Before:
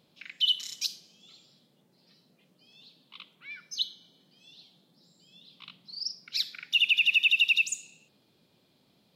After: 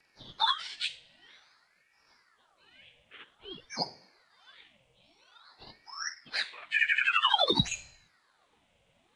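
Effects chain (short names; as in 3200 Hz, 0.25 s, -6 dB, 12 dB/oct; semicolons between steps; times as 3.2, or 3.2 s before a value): inharmonic rescaling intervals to 88%; ring modulator with a swept carrier 1200 Hz, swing 75%, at 0.51 Hz; gain +3.5 dB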